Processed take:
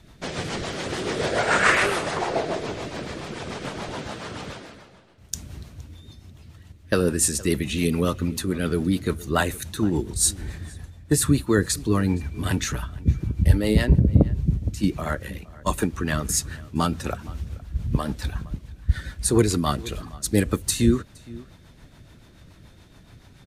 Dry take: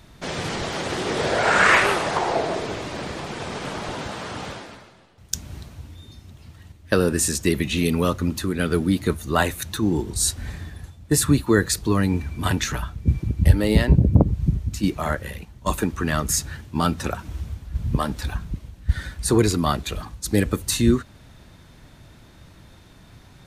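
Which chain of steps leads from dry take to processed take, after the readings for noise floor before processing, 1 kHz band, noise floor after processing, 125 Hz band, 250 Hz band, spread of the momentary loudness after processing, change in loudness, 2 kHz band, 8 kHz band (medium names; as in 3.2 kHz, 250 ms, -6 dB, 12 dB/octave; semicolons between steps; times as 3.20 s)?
-49 dBFS, -3.5 dB, -51 dBFS, -1.5 dB, -1.5 dB, 15 LU, -1.5 dB, -3.0 dB, 0.0 dB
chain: dynamic bell 9.3 kHz, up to +4 dB, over -41 dBFS, Q 1.4; rotary cabinet horn 7 Hz; echo from a far wall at 80 m, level -20 dB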